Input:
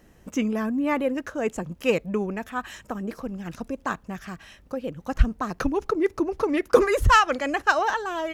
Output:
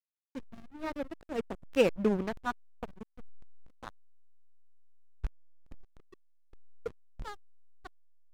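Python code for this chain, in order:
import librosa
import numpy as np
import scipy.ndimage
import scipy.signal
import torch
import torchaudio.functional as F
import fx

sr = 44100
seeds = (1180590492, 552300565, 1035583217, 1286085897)

y = fx.rattle_buzz(x, sr, strikes_db=-22.0, level_db=-14.0)
y = fx.doppler_pass(y, sr, speed_mps=18, closest_m=9.2, pass_at_s=2.17)
y = fx.backlash(y, sr, play_db=-25.5)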